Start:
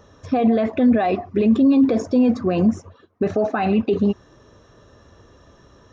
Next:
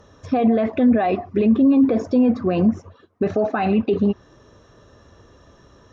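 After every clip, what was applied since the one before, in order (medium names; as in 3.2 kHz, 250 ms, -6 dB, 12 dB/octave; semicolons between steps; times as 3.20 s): low-pass that closes with the level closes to 2.4 kHz, closed at -12 dBFS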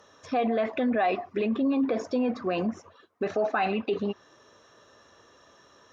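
high-pass 900 Hz 6 dB/octave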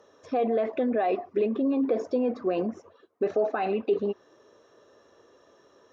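peaking EQ 420 Hz +11.5 dB 1.6 oct; trim -7.5 dB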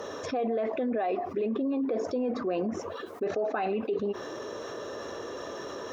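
level flattener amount 70%; trim -7 dB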